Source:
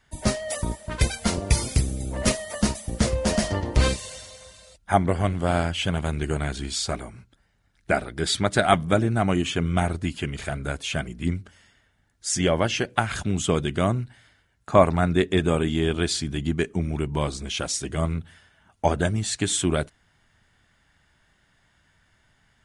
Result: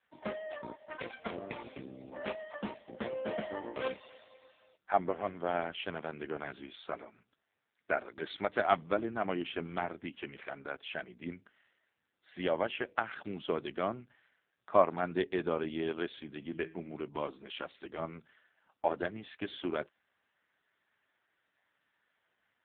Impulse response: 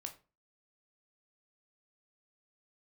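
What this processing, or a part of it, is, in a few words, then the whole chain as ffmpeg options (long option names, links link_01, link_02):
telephone: -filter_complex "[0:a]asettb=1/sr,asplit=3[link_01][link_02][link_03];[link_01]atrim=end=16.324[link_04];[link_02]atrim=start=16.32:end=16.92,asetpts=PTS-STARTPTS,afade=type=in:duration=0.004:curve=qsin,afade=type=out:start_time=0.596:duration=0.004:curve=qsin,bandreject=frequency=161.1:width_type=h:width=4,bandreject=frequency=322.2:width_type=h:width=4,bandreject=frequency=483.3:width_type=h:width=4,bandreject=frequency=644.4:width_type=h:width=4,bandreject=frequency=805.5:width_type=h:width=4,bandreject=frequency=966.6:width_type=h:width=4,bandreject=frequency=1127.7:width_type=h:width=4,bandreject=frequency=1288.8:width_type=h:width=4,bandreject=frequency=1449.9:width_type=h:width=4,bandreject=frequency=1611:width_type=h:width=4,bandreject=frequency=1772.1:width_type=h:width=4,bandreject=frequency=1933.2:width_type=h:width=4,bandreject=frequency=2094.3:width_type=h:width=4,bandreject=frequency=2255.4:width_type=h:width=4,bandreject=frequency=2416.5:width_type=h:width=4,bandreject=frequency=2577.6:width_type=h:width=4,bandreject=frequency=2738.7:width_type=h:width=4,bandreject=frequency=2899.8:width_type=h:width=4,bandreject=frequency=3060.9:width_type=h:width=4,bandreject=frequency=3222:width_type=h:width=4,bandreject=frequency=3383.1:width_type=h:width=4,bandreject=frequency=3544.2:width_type=h:width=4,bandreject=frequency=3705.3:width_type=h:width=4,bandreject=frequency=3866.4:width_type=h:width=4,bandreject=frequency=4027.5:width_type=h:width=4,bandreject=frequency=4188.6:width_type=h:width=4,bandreject=frequency=4349.7:width_type=h:width=4,bandreject=frequency=4510.8:width_type=h:width=4,bandreject=frequency=4671.9:width_type=h:width=4,bandreject=frequency=4833:width_type=h:width=4,bandreject=frequency=4994.1:width_type=h:width=4,bandreject=frequency=5155.2:width_type=h:width=4,bandreject=frequency=5316.3:width_type=h:width=4,bandreject=frequency=5477.4:width_type=h:width=4[link_05];[link_03]atrim=start=16.916[link_06];[link_04][link_05]acrossfade=duration=0.004:curve1=hsin:curve2=qsin[link_07];[link_07][link_06]acrossfade=duration=0.004:curve1=qsin:curve2=hsin,highpass=320,lowpass=3300,volume=-7dB" -ar 8000 -c:a libopencore_amrnb -b:a 5900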